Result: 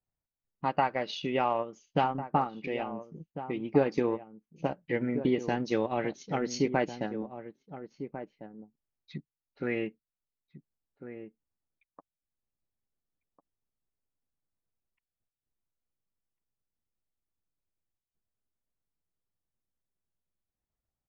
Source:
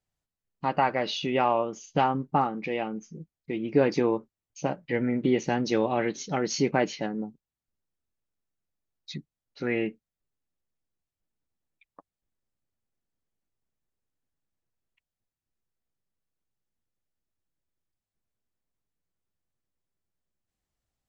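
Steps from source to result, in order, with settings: level-controlled noise filter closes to 1.5 kHz, open at -23 dBFS; transient shaper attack +3 dB, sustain -7 dB; echo from a far wall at 240 m, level -11 dB; trim -4.5 dB

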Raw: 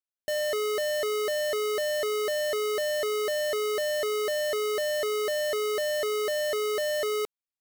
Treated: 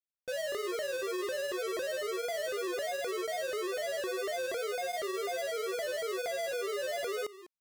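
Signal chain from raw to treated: delay 207 ms -16 dB; granulator, spray 20 ms, pitch spread up and down by 3 st; trim -5.5 dB

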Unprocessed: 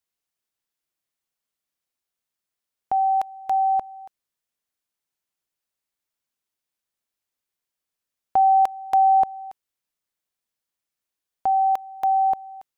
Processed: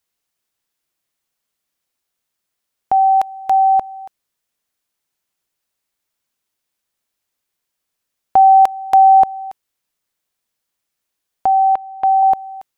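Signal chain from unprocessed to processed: 11.46–12.23 s: distance through air 390 m; trim +8 dB

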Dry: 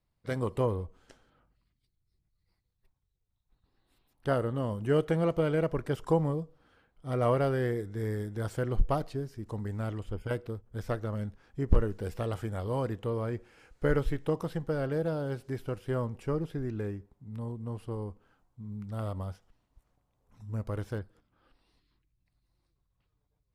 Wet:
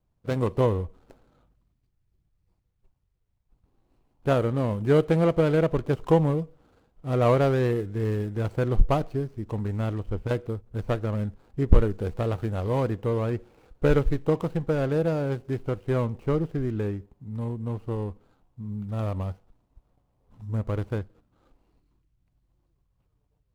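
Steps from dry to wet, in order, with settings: median filter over 25 samples; trim +6.5 dB

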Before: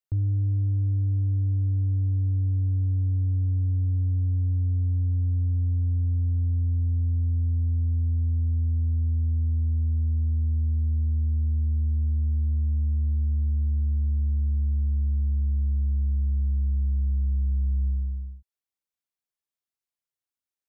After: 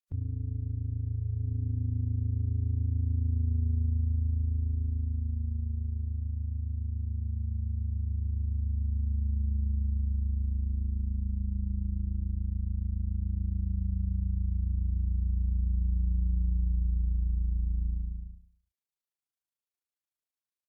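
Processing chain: de-hum 292.6 Hz, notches 7; AM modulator 27 Hz, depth 60%; formant-preserving pitch shift -2.5 st; on a send: feedback delay 100 ms, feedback 28%, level -11 dB; on the sum: trim -2 dB

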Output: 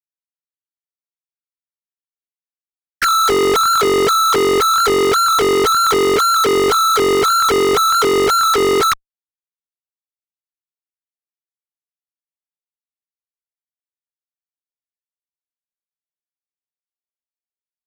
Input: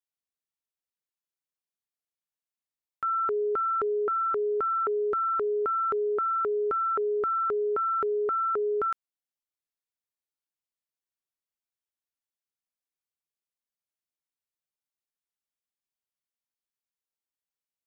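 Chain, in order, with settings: formants replaced by sine waves; fuzz box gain 52 dB, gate -60 dBFS

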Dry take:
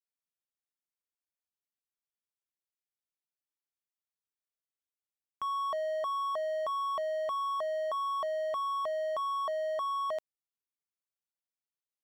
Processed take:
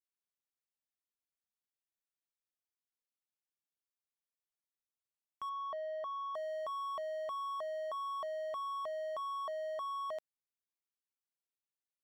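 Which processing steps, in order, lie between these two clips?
5.49–6.35 s: distance through air 200 m; trim -6.5 dB

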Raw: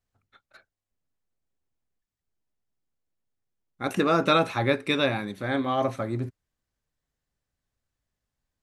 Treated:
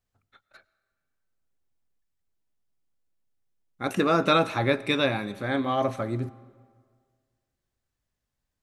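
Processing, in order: algorithmic reverb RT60 1.8 s, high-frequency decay 0.7×, pre-delay 65 ms, DRR 19.5 dB

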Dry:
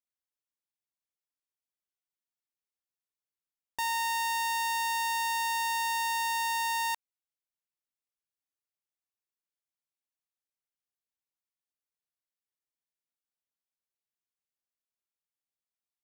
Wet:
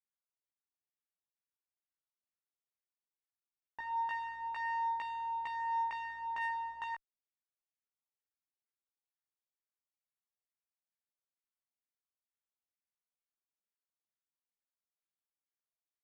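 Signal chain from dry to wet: LFO low-pass saw down 2.2 Hz 710–2300 Hz; chorus 0.19 Hz, delay 16 ms, depth 3.3 ms; Chebyshev shaper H 6 -37 dB, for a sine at -21 dBFS; trim -7.5 dB

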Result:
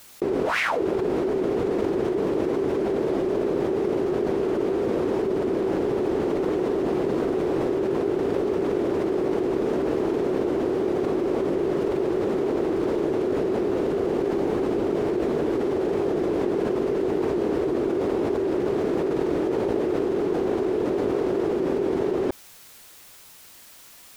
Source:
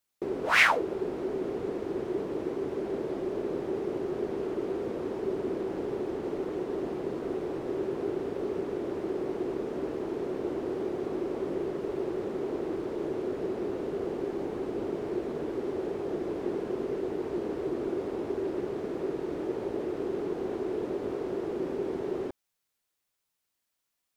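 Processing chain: level flattener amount 100%; trim -6 dB

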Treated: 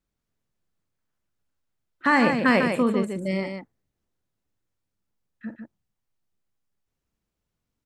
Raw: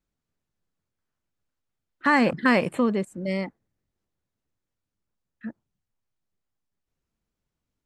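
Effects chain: loudspeakers at several distances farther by 16 m -11 dB, 51 m -6 dB

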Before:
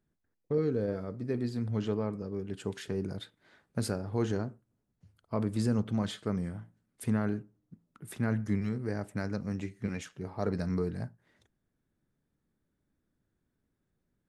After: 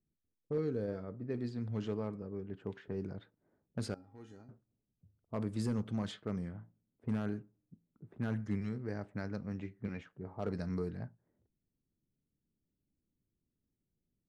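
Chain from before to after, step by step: level-controlled noise filter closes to 410 Hz, open at -26 dBFS; overload inside the chain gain 21 dB; 3.94–4.49 s: feedback comb 270 Hz, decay 0.28 s, harmonics odd, mix 90%; trim -5.5 dB

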